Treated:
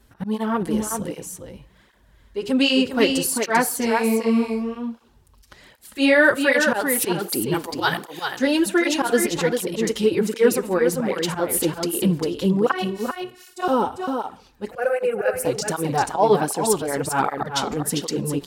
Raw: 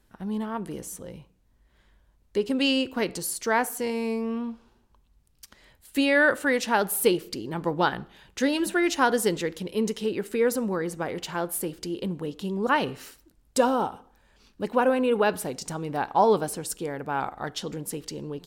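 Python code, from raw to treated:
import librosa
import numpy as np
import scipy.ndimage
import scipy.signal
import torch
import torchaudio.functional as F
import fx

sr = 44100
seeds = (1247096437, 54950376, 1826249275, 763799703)

p1 = fx.riaa(x, sr, side='recording', at=(7.54, 8.39))
p2 = fx.rider(p1, sr, range_db=4, speed_s=0.5)
p3 = p1 + F.gain(torch.from_numpy(p2), 3.0).numpy()
p4 = fx.auto_swell(p3, sr, attack_ms=102.0)
p5 = fx.robotise(p4, sr, hz=369.0, at=(12.71, 13.68))
p6 = fx.fixed_phaser(p5, sr, hz=980.0, stages=6, at=(14.71, 15.45))
p7 = p6 + fx.echo_single(p6, sr, ms=396, db=-5.5, dry=0)
p8 = fx.flanger_cancel(p7, sr, hz=1.3, depth_ms=6.8)
y = F.gain(torch.from_numpy(p8), 1.5).numpy()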